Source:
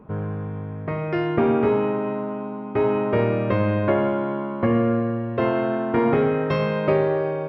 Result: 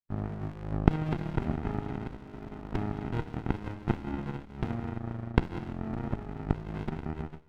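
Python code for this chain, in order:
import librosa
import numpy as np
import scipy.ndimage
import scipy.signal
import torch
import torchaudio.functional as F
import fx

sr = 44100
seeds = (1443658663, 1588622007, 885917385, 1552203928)

p1 = fx.fade_out_tail(x, sr, length_s=2.3)
p2 = fx.recorder_agc(p1, sr, target_db=-12.5, rise_db_per_s=71.0, max_gain_db=30)
p3 = p2 + fx.echo_feedback(p2, sr, ms=187, feedback_pct=48, wet_db=-15.5, dry=0)
p4 = fx.power_curve(p3, sr, exponent=3.0)
p5 = fx.backlash(p4, sr, play_db=-30.0)
p6 = p4 + (p5 * librosa.db_to_amplitude(-11.0))
p7 = fx.high_shelf(p6, sr, hz=2300.0, db=-10.0, at=(5.73, 6.75))
p8 = fx.spec_gate(p7, sr, threshold_db=-25, keep='strong')
p9 = fx.rev_schroeder(p8, sr, rt60_s=0.66, comb_ms=32, drr_db=12.0)
y = fx.running_max(p9, sr, window=65)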